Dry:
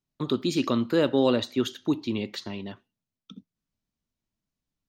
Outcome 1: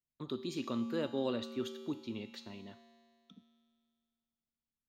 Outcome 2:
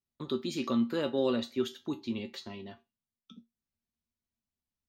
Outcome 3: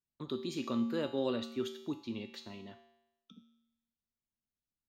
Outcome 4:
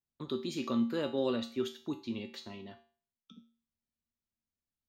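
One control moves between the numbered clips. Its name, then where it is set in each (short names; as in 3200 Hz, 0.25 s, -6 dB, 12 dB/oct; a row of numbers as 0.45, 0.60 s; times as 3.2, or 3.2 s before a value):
resonator, decay: 2.1, 0.18, 0.89, 0.42 s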